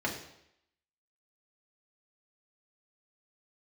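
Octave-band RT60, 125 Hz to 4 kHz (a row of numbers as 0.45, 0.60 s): 0.70, 0.75, 0.75, 0.75, 0.80, 0.75 s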